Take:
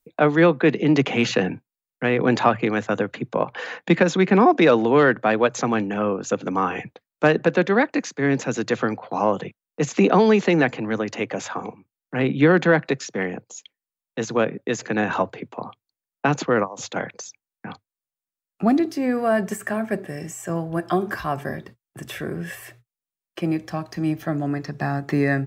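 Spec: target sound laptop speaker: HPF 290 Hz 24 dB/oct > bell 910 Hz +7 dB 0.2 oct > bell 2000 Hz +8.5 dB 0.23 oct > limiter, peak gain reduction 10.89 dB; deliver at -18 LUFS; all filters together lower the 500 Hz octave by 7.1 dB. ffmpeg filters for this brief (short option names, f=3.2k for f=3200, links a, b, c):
-af "highpass=f=290:w=0.5412,highpass=f=290:w=1.3066,equalizer=f=500:t=o:g=-9,equalizer=f=910:t=o:w=0.2:g=7,equalizer=f=2k:t=o:w=0.23:g=8.5,volume=11dB,alimiter=limit=-5dB:level=0:latency=1"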